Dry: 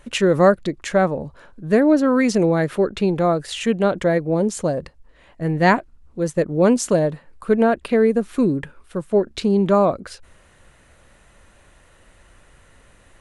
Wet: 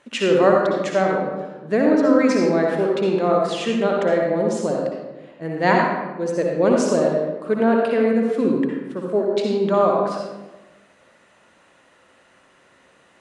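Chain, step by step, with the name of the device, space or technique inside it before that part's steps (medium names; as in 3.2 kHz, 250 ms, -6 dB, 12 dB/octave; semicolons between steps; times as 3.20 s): supermarket ceiling speaker (band-pass 230–7000 Hz; reverberation RT60 1.2 s, pre-delay 54 ms, DRR -1 dB); trim -3 dB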